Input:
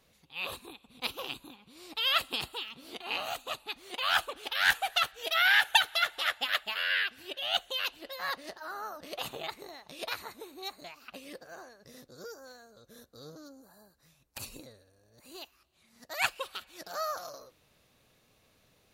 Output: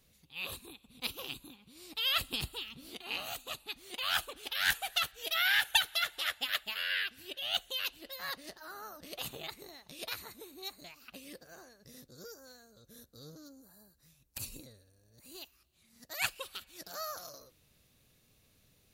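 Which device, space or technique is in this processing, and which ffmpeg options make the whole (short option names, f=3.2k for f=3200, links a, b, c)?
smiley-face EQ: -filter_complex "[0:a]asettb=1/sr,asplit=3[a][b][c];[a]atrim=end=2.154[d];[b]atrim=start=2.15:end=2.89,asetpts=PTS-STARTPTS,afade=t=in:d=0.004:c=qsin,afade=t=out:st=0.736:d=0.004:c=qsin,lowshelf=f=160:g=9.5[e];[c]atrim=start=2.886[f];[d][e]acrossfade=d=0.004:c1=hsin:c2=qsin[g];[g][f]acrossfade=d=0.004:c1=qsin:c2=hsin,lowshelf=f=180:g=6,equalizer=f=860:t=o:w=2:g=-6.5,highshelf=f=7.8k:g=7.5,volume=-2.5dB"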